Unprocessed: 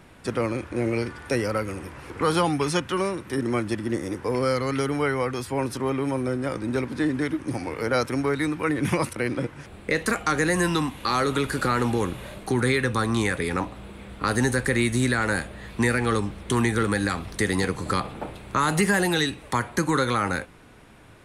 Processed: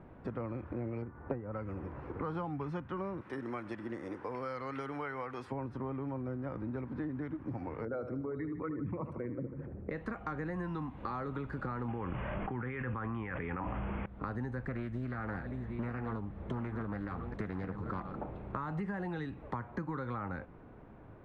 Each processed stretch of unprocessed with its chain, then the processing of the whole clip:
1.02–1.53 LPF 1500 Hz + transient shaper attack +11 dB, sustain -3 dB
3.21–5.52 tilt +4 dB/oct + echo 98 ms -22 dB
7.85–9.9 formant sharpening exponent 2 + HPF 47 Hz + feedback echo 76 ms, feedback 54%, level -10.5 dB
11.88–14.06 steep low-pass 3200 Hz 96 dB/oct + tilt shelf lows -5.5 dB, about 1100 Hz + fast leveller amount 100%
14.61–18.21 reverse delay 0.683 s, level -11 dB + Doppler distortion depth 0.57 ms
whole clip: LPF 1000 Hz 12 dB/oct; dynamic EQ 420 Hz, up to -7 dB, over -37 dBFS, Q 1; compressor 4:1, threshold -34 dBFS; gain -2 dB

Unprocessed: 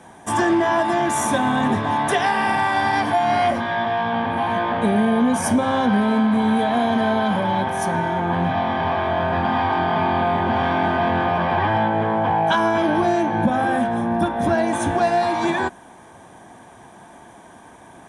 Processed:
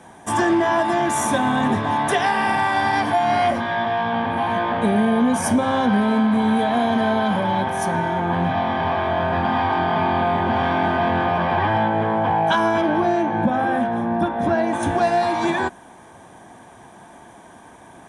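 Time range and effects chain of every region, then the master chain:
12.81–14.83 LPF 3100 Hz 6 dB/oct + low shelf 61 Hz -9.5 dB
whole clip: dry

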